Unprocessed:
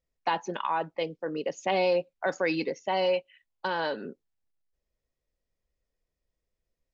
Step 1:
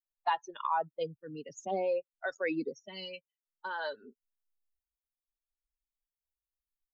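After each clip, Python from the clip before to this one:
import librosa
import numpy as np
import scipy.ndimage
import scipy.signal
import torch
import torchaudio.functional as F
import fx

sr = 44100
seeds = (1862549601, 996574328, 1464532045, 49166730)

y = fx.bin_expand(x, sr, power=2.0)
y = fx.rider(y, sr, range_db=4, speed_s=0.5)
y = fx.stagger_phaser(y, sr, hz=0.58)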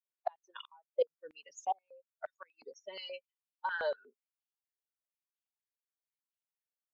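y = fx.gate_flip(x, sr, shuts_db=-25.0, range_db=-33)
y = fx.noise_reduce_blind(y, sr, reduce_db=7)
y = fx.filter_held_highpass(y, sr, hz=8.4, low_hz=500.0, high_hz=2900.0)
y = y * 10.0 ** (-3.5 / 20.0)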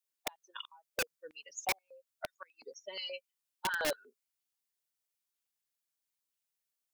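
y = fx.high_shelf(x, sr, hz=2800.0, db=8.5)
y = (np.mod(10.0 ** (26.0 / 20.0) * y + 1.0, 2.0) - 1.0) / 10.0 ** (26.0 / 20.0)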